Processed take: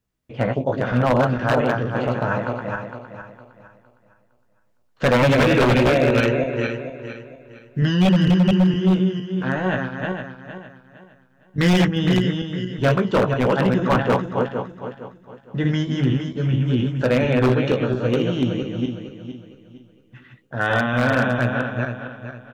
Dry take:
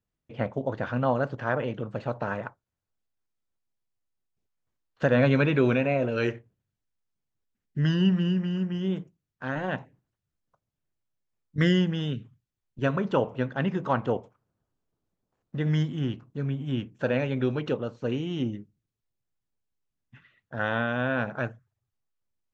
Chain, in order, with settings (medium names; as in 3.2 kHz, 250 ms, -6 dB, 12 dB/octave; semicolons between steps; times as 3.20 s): backward echo that repeats 230 ms, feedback 56%, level -3 dB; doubling 16 ms -6.5 dB; wavefolder -16 dBFS; trim +6 dB